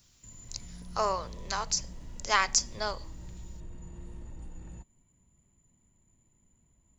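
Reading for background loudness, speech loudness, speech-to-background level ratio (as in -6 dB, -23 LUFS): -48.0 LUFS, -30.0 LUFS, 18.0 dB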